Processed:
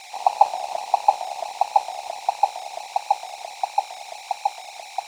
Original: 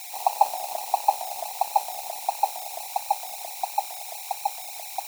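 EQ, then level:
high-frequency loss of the air 100 metres
+4.5 dB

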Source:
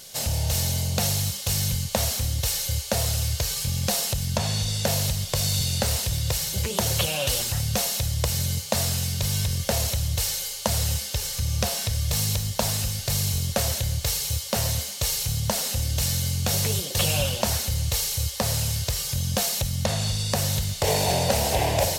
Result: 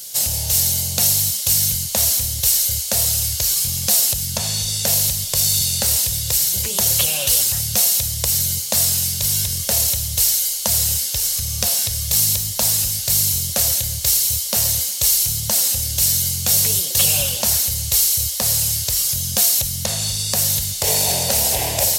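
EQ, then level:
high-shelf EQ 3,000 Hz +8.5 dB
high-shelf EQ 6,300 Hz +9 dB
−2.5 dB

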